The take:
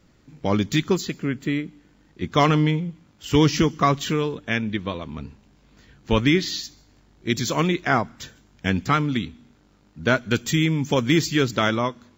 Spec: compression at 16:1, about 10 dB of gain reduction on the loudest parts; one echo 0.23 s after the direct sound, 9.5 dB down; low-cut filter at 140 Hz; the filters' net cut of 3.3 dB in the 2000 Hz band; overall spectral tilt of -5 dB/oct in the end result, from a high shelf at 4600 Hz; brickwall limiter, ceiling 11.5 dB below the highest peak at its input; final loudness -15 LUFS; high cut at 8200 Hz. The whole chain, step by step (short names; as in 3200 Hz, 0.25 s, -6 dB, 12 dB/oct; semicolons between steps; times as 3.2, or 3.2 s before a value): HPF 140 Hz; LPF 8200 Hz; bell 2000 Hz -3.5 dB; high shelf 4600 Hz -4 dB; compressor 16:1, threshold -24 dBFS; limiter -23.5 dBFS; echo 0.23 s -9.5 dB; gain +19.5 dB